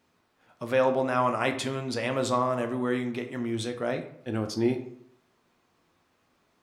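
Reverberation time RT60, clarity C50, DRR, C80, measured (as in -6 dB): 0.65 s, 10.5 dB, 5.0 dB, 13.5 dB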